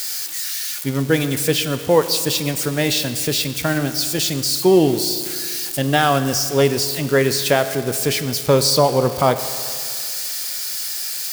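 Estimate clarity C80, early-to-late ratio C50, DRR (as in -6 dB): 12.0 dB, 11.0 dB, 10.0 dB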